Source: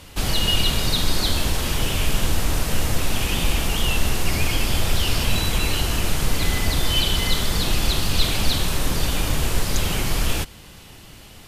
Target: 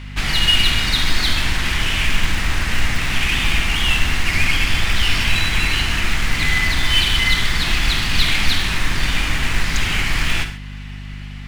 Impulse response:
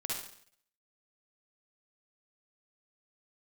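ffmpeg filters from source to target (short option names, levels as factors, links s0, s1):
-filter_complex "[0:a]equalizer=f=125:t=o:w=1:g=-5,equalizer=f=500:t=o:w=1:g=-10,equalizer=f=2000:t=o:w=1:g=11,adynamicsmooth=sensitivity=2.5:basefreq=5200,acrusher=bits=8:mode=log:mix=0:aa=0.000001,aeval=exprs='val(0)+0.0224*(sin(2*PI*50*n/s)+sin(2*PI*2*50*n/s)/2+sin(2*PI*3*50*n/s)/3+sin(2*PI*4*50*n/s)/4+sin(2*PI*5*50*n/s)/5)':c=same,asplit=2[s0][s1];[1:a]atrim=start_sample=2205,atrim=end_sample=6615[s2];[s1][s2]afir=irnorm=-1:irlink=0,volume=0.531[s3];[s0][s3]amix=inputs=2:normalize=0,volume=0.891"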